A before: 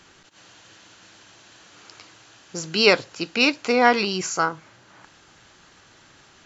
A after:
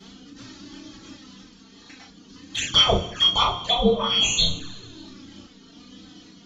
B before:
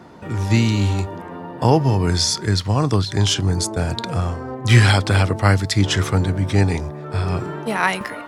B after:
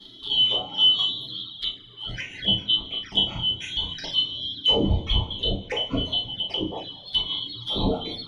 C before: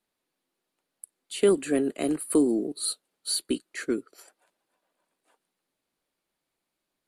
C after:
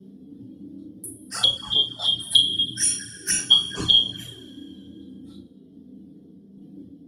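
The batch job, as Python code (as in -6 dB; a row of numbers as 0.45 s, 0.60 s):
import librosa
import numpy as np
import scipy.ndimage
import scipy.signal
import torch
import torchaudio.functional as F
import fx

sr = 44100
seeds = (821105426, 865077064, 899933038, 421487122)

y = fx.band_shuffle(x, sr, order='2413')
y = fx.dereverb_blind(y, sr, rt60_s=1.5)
y = fx.env_lowpass_down(y, sr, base_hz=530.0, full_db=-14.0)
y = fx.dereverb_blind(y, sr, rt60_s=0.67)
y = fx.notch(y, sr, hz=7700.0, q=5.4)
y = fx.rider(y, sr, range_db=4, speed_s=0.5)
y = fx.dmg_noise_band(y, sr, seeds[0], low_hz=97.0, high_hz=340.0, level_db=-53.0)
y = fx.vibrato(y, sr, rate_hz=1.2, depth_cents=5.9)
y = fx.tremolo_random(y, sr, seeds[1], hz=3.5, depth_pct=55)
y = fx.doubler(y, sr, ms=35.0, db=-5)
y = fx.rev_double_slope(y, sr, seeds[2], early_s=0.26, late_s=2.0, knee_db=-21, drr_db=-8.0)
y = fx.env_flanger(y, sr, rest_ms=5.4, full_db=-22.5)
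y = y * 10.0 ** (-26 / 20.0) / np.sqrt(np.mean(np.square(y)))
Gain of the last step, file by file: +3.5 dB, -3.0 dB, +5.5 dB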